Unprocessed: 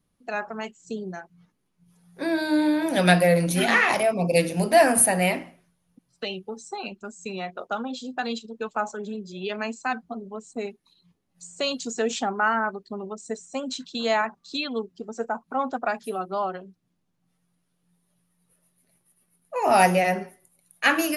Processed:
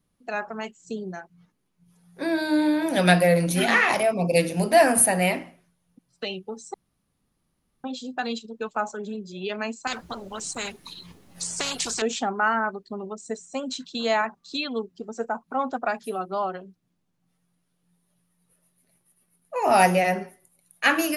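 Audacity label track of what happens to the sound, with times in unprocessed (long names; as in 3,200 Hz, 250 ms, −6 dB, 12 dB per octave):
6.740000	7.840000	fill with room tone
9.870000	12.020000	every bin compressed towards the loudest bin 4 to 1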